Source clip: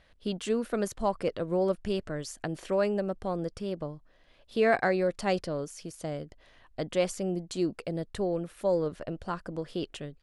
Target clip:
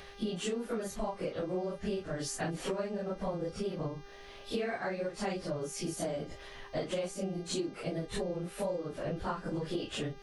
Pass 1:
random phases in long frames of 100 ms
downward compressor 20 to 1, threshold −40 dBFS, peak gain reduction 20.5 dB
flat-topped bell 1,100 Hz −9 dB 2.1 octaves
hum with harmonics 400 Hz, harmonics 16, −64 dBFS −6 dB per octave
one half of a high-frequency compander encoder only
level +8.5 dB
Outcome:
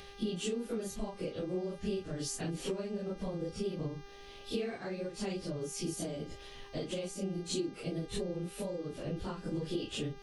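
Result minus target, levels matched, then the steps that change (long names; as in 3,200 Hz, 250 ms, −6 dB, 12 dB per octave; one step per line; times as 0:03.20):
1,000 Hz band −6.0 dB
remove: flat-topped bell 1,100 Hz −9 dB 2.1 octaves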